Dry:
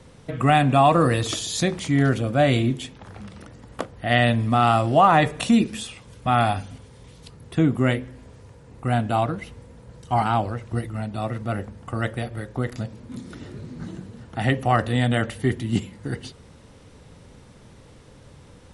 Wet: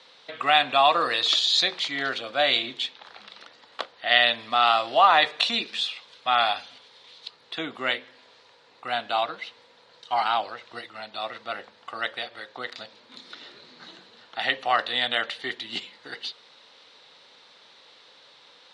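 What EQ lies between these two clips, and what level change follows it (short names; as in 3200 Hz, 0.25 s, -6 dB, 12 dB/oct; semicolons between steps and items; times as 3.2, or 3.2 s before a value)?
HPF 750 Hz 12 dB/oct; synth low-pass 4000 Hz, resonance Q 4.2; 0.0 dB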